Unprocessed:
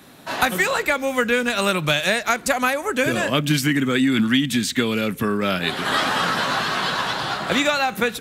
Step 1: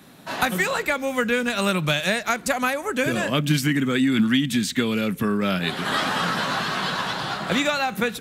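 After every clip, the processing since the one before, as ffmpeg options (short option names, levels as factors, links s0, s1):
-af "equalizer=f=180:w=2.1:g=5.5,volume=0.708"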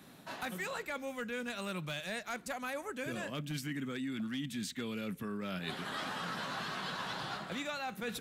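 -af "volume=4.73,asoftclip=hard,volume=0.211,areverse,acompressor=threshold=0.0355:ratio=6,areverse,volume=0.422"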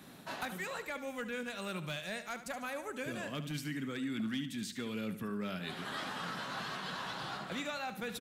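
-af "alimiter=level_in=2.66:limit=0.0631:level=0:latency=1:release=498,volume=0.376,aecho=1:1:73|146|219|292:0.251|0.103|0.0422|0.0173,volume=1.26"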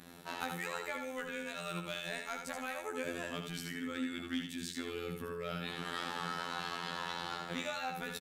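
-af "afftfilt=real='hypot(re,im)*cos(PI*b)':imag='0':win_size=2048:overlap=0.75,aecho=1:1:79:0.501,volume=1.41"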